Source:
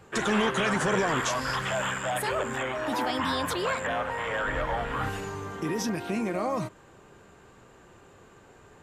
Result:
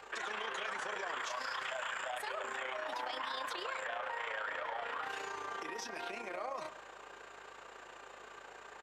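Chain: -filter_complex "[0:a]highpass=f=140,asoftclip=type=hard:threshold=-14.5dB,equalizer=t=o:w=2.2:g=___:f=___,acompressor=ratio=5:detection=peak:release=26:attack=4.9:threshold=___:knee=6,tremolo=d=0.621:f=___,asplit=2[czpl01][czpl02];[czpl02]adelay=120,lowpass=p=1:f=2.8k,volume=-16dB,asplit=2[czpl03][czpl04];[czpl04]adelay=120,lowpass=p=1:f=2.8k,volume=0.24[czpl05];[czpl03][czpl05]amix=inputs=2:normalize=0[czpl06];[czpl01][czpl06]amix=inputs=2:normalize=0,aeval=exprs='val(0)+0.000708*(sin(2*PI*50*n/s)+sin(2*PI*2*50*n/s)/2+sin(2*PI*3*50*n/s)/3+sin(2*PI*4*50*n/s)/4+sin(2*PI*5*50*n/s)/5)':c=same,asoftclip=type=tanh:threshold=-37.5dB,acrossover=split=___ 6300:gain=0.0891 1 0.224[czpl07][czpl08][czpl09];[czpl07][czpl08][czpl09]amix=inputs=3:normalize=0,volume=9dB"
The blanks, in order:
-8, 230, -46dB, 29, 360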